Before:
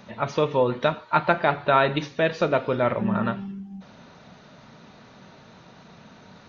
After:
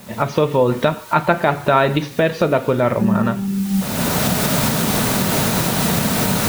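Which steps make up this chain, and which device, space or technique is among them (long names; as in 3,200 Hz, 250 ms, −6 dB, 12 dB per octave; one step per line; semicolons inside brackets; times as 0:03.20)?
low-shelf EQ 470 Hz +5 dB
cheap recorder with automatic gain (white noise bed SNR 26 dB; camcorder AGC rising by 29 dB per second)
level +3 dB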